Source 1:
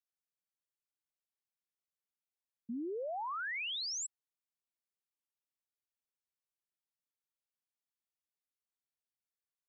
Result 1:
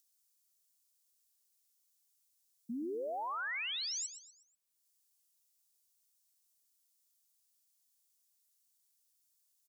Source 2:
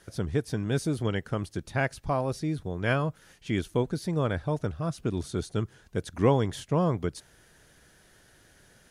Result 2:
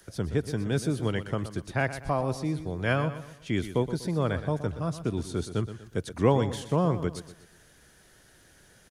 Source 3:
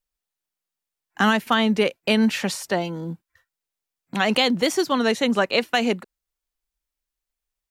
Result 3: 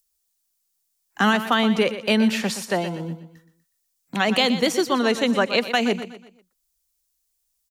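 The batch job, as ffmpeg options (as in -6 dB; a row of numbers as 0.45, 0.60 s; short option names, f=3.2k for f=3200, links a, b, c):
-filter_complex "[0:a]acrossover=split=130|690|4700[a][b][c][d];[d]acompressor=mode=upward:threshold=-59dB:ratio=2.5[e];[a][b][c][e]amix=inputs=4:normalize=0,aecho=1:1:122|244|366|488:0.251|0.098|0.0382|0.0149"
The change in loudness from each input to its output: +0.5, +0.5, 0.0 LU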